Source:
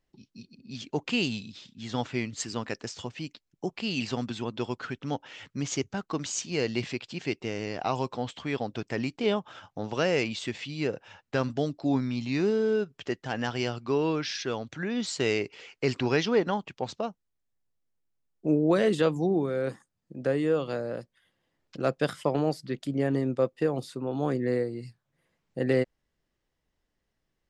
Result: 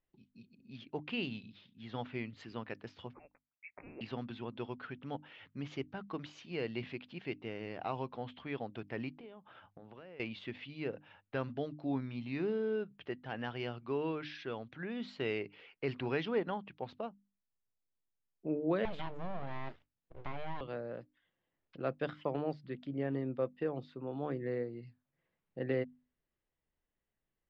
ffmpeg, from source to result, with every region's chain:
ffmpeg -i in.wav -filter_complex "[0:a]asettb=1/sr,asplit=3[link_01][link_02][link_03];[link_01]atrim=end=3.134[link_04];[link_02]atrim=start=3.13:end=4.01,asetpts=PTS-STARTPTS,afade=type=in:duration=0.004:curve=qsin,afade=type=out:start_time=0.876:duration=0.004:curve=qsin,highpass=frequency=650:width=0.5412,highpass=frequency=650:width=1.3066,lowpass=frequency=2600:width_type=q:width=0.5098,lowpass=frequency=2600:width_type=q:width=0.6013,lowpass=frequency=2600:width_type=q:width=0.9,lowpass=frequency=2600:width_type=q:width=2.563,afreqshift=-3000[link_05];[link_03]atrim=start=4.006[link_06];[link_04][link_05]acrossfade=duration=0.004:curve1=hsin:curve2=qsin[link_07];[link_07][link_06]acrossfade=duration=0.004:curve1=qsin:curve2=hsin,asettb=1/sr,asplit=3[link_08][link_09][link_10];[link_08]atrim=end=9.094[link_11];[link_09]atrim=start=9.09:end=10.2,asetpts=PTS-STARTPTS,afade=type=in:duration=0.004:curve=qsin,afade=type=out:start_time=1.106:duration=0.004:curve=qsin,acompressor=threshold=-39dB:ratio=8:attack=3.2:release=140:knee=1:detection=peak,lowpass=frequency=3100:poles=1[link_12];[link_10]atrim=start=10.196[link_13];[link_11][link_12]acrossfade=duration=0.004:curve1=hsin:curve2=qsin[link_14];[link_14][link_13]acrossfade=duration=0.004:curve1=qsin:curve2=hsin,asettb=1/sr,asplit=3[link_15][link_16][link_17];[link_15]atrim=end=18.854[link_18];[link_16]atrim=start=18.85:end=20.61,asetpts=PTS-STARTPTS,afade=type=in:duration=0.004:curve=qsin,afade=type=out:start_time=1.756:duration=0.004:curve=qsin,aeval=exprs='abs(val(0))':channel_layout=same,highshelf=frequency=6100:gain=10,acompressor=threshold=-24dB:ratio=5:attack=3.2:release=140:knee=1:detection=peak[link_19];[link_17]atrim=start=20.606[link_20];[link_18][link_19]acrossfade=duration=0.004:curve1=hsin:curve2=qsin[link_21];[link_21][link_20]acrossfade=duration=0.004:curve1=qsin:curve2=hsin,lowpass=frequency=3400:width=0.5412,lowpass=frequency=3400:width=1.3066,bandreject=frequency=50:width_type=h:width=6,bandreject=frequency=100:width_type=h:width=6,bandreject=frequency=150:width_type=h:width=6,bandreject=frequency=200:width_type=h:width=6,bandreject=frequency=250:width_type=h:width=6,bandreject=frequency=300:width_type=h:width=6,volume=-9dB" out.wav

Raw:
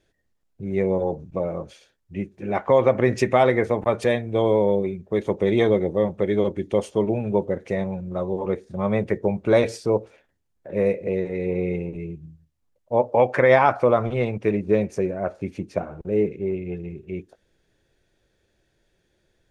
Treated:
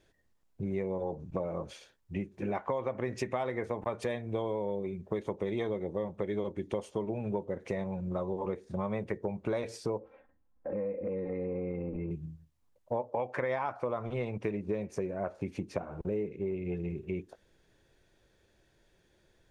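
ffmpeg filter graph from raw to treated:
ffmpeg -i in.wav -filter_complex "[0:a]asettb=1/sr,asplit=3[link_01][link_02][link_03];[link_01]atrim=end=9.994[link_04];[link_02]atrim=start=9.99:end=12.11,asetpts=PTS-STARTPTS,afade=type=in:duration=0.004:curve=qsin,afade=type=out:start_time=2.116:duration=0.004:curve=qsin,lowpass=1400,aecho=1:1:3.8:0.8,atrim=end_sample=93492,acompressor=threshold=-32dB:ratio=3:attack=3.2:release=140:knee=1:detection=peak[link_05];[link_03]atrim=start=12.106[link_06];[link_04][link_05]acrossfade=duration=0.004:curve1=hsin:curve2=qsin[link_07];[link_07][link_06]acrossfade=duration=0.004:curve1=qsin:curve2=hsin,equalizer=frequency=1000:width_type=o:width=0.47:gain=4.5,acompressor=threshold=-31dB:ratio=6" out.wav

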